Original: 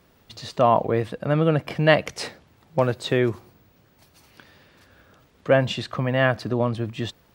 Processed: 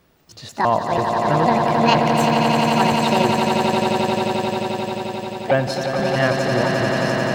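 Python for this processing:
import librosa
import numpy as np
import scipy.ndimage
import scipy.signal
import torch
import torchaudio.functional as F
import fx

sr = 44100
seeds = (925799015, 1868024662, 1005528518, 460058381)

y = fx.pitch_trill(x, sr, semitones=7.0, every_ms=162)
y = fx.echo_swell(y, sr, ms=88, loudest=8, wet_db=-6.5)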